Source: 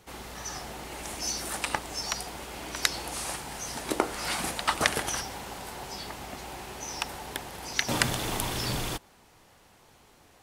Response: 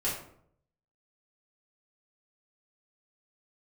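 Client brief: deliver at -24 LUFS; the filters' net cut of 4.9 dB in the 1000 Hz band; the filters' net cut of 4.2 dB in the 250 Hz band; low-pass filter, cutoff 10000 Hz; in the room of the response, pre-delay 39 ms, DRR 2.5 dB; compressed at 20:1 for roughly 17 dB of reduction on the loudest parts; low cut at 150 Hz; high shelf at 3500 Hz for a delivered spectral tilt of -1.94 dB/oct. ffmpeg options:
-filter_complex "[0:a]highpass=150,lowpass=10k,equalizer=f=250:t=o:g=-4.5,equalizer=f=1k:t=o:g=-7,highshelf=f=3.5k:g=8.5,acompressor=threshold=-35dB:ratio=20,asplit=2[a][b];[1:a]atrim=start_sample=2205,adelay=39[c];[b][c]afir=irnorm=-1:irlink=0,volume=-9.5dB[d];[a][d]amix=inputs=2:normalize=0,volume=12.5dB"

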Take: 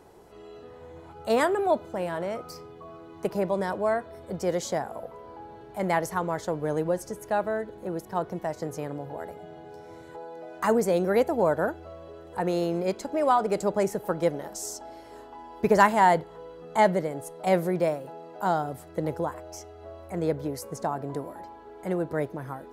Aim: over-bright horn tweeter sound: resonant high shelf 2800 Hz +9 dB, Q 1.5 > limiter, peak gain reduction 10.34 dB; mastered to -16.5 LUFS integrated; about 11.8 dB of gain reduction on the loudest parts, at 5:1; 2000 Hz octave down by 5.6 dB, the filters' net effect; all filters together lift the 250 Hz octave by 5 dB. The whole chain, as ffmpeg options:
-af "equalizer=f=250:t=o:g=7.5,equalizer=f=2k:t=o:g=-5,acompressor=threshold=-27dB:ratio=5,highshelf=f=2.8k:t=q:w=1.5:g=9,volume=19.5dB,alimiter=limit=-5dB:level=0:latency=1"

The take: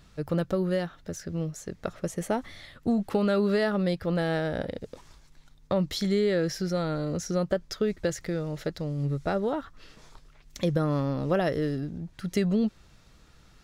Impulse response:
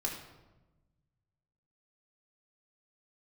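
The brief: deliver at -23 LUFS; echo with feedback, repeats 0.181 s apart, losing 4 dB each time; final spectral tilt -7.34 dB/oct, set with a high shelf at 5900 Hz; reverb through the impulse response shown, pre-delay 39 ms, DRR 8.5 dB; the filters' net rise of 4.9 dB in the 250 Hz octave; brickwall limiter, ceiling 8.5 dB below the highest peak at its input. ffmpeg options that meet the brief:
-filter_complex "[0:a]equalizer=f=250:t=o:g=7,highshelf=f=5.9k:g=-4,alimiter=limit=-18dB:level=0:latency=1,aecho=1:1:181|362|543|724|905|1086|1267|1448|1629:0.631|0.398|0.25|0.158|0.0994|0.0626|0.0394|0.0249|0.0157,asplit=2[a][b];[1:a]atrim=start_sample=2205,adelay=39[c];[b][c]afir=irnorm=-1:irlink=0,volume=-11.5dB[d];[a][d]amix=inputs=2:normalize=0,volume=3.5dB"

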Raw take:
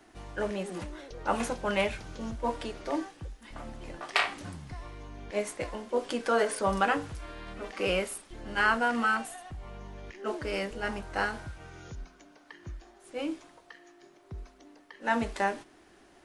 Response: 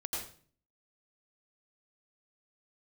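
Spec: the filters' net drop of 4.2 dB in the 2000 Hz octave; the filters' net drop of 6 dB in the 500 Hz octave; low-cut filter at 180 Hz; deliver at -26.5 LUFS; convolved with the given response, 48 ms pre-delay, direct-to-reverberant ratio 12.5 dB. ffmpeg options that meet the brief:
-filter_complex "[0:a]highpass=180,equalizer=f=500:t=o:g=-7,equalizer=f=2k:t=o:g=-5.5,asplit=2[a][b];[1:a]atrim=start_sample=2205,adelay=48[c];[b][c]afir=irnorm=-1:irlink=0,volume=-14.5dB[d];[a][d]amix=inputs=2:normalize=0,volume=8.5dB"

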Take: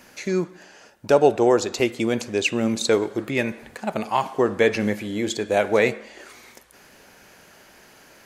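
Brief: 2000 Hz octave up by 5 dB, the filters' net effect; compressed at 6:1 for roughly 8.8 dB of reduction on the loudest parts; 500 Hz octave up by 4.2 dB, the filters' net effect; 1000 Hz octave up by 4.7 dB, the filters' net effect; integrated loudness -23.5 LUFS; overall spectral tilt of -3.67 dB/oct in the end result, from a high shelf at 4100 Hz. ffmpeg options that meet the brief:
-af "equalizer=f=500:t=o:g=4,equalizer=f=1k:t=o:g=3.5,equalizer=f=2k:t=o:g=3.5,highshelf=f=4.1k:g=6.5,acompressor=threshold=-16dB:ratio=6,volume=-0.5dB"

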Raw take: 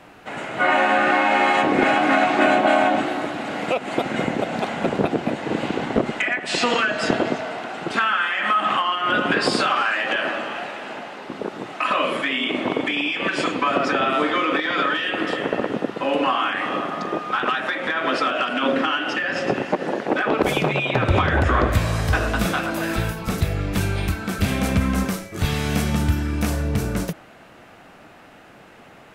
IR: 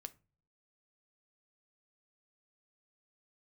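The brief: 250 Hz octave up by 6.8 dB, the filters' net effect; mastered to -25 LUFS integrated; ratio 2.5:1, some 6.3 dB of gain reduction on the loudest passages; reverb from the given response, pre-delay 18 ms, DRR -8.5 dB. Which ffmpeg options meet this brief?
-filter_complex "[0:a]equalizer=f=250:t=o:g=8.5,acompressor=threshold=-20dB:ratio=2.5,asplit=2[a][b];[1:a]atrim=start_sample=2205,adelay=18[c];[b][c]afir=irnorm=-1:irlink=0,volume=13.5dB[d];[a][d]amix=inputs=2:normalize=0,volume=-11dB"

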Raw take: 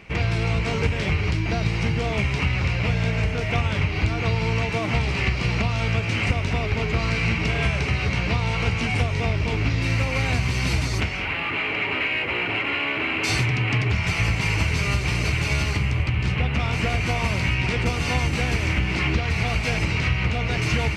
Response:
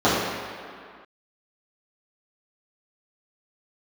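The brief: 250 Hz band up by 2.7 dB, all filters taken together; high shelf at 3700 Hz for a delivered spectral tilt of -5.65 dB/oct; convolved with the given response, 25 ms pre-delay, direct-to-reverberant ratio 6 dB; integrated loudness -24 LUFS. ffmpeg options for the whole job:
-filter_complex "[0:a]equalizer=f=250:t=o:g=4,highshelf=f=3.7k:g=-6,asplit=2[a][b];[1:a]atrim=start_sample=2205,adelay=25[c];[b][c]afir=irnorm=-1:irlink=0,volume=-29dB[d];[a][d]amix=inputs=2:normalize=0,volume=-2.5dB"

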